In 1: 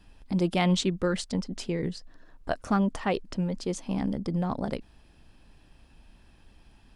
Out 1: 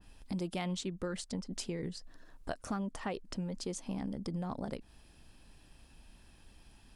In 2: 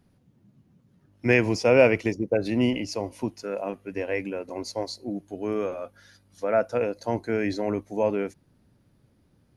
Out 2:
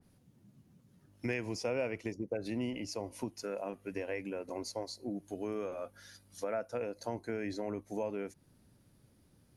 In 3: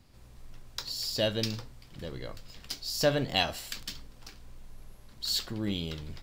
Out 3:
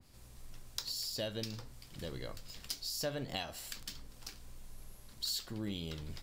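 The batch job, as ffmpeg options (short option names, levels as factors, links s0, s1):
-af "equalizer=f=11000:w=0.4:g=9.5,acompressor=threshold=0.0224:ratio=3,adynamicequalizer=threshold=0.00282:dfrequency=2300:dqfactor=0.7:tfrequency=2300:tqfactor=0.7:attack=5:release=100:ratio=0.375:range=3:mode=cutabove:tftype=highshelf,volume=0.708"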